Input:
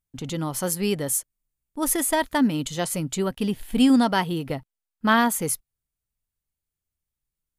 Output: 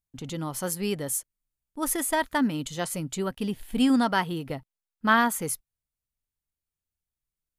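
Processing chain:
dynamic equaliser 1,400 Hz, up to +5 dB, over −34 dBFS, Q 1.2
level −4.5 dB

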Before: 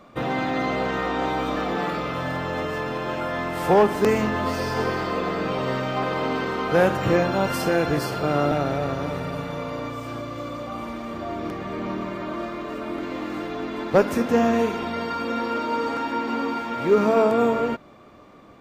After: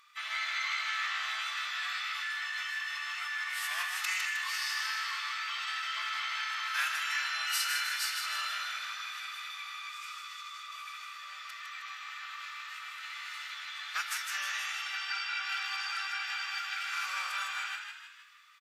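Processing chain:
Bessel high-pass filter 2,300 Hz, order 8
phase-vocoder pitch shift with formants kept −3 semitones
echo with shifted repeats 156 ms, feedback 49%, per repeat +63 Hz, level −5.5 dB
level +2.5 dB

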